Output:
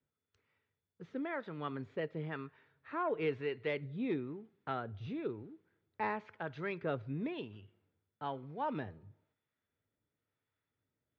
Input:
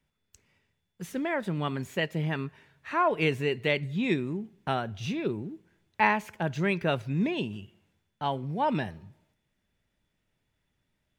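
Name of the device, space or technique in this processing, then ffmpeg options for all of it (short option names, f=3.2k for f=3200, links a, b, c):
guitar amplifier with harmonic tremolo: -filter_complex "[0:a]acrossover=split=680[a][b];[a]aeval=exprs='val(0)*(1-0.5/2+0.5/2*cos(2*PI*1*n/s))':c=same[c];[b]aeval=exprs='val(0)*(1-0.5/2-0.5/2*cos(2*PI*1*n/s))':c=same[d];[c][d]amix=inputs=2:normalize=0,asoftclip=type=tanh:threshold=-17dB,highpass=95,equalizer=f=100:t=q:w=4:g=7,equalizer=f=190:t=q:w=4:g=-6,equalizer=f=280:t=q:w=4:g=4,equalizer=f=460:t=q:w=4:g=7,equalizer=f=1.3k:t=q:w=4:g=7,equalizer=f=2.8k:t=q:w=4:g=-5,lowpass=f=3.9k:w=0.5412,lowpass=f=3.9k:w=1.3066,volume=-8.5dB"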